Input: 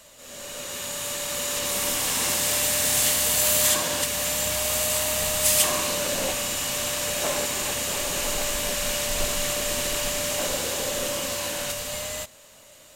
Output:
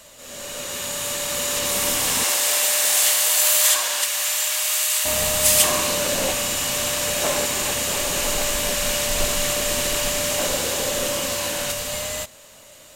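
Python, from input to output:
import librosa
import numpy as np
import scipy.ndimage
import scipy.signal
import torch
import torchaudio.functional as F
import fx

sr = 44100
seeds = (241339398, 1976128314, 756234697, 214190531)

y = fx.highpass(x, sr, hz=fx.line((2.23, 460.0), (5.04, 1400.0)), slope=12, at=(2.23, 5.04), fade=0.02)
y = y * 10.0 ** (4.0 / 20.0)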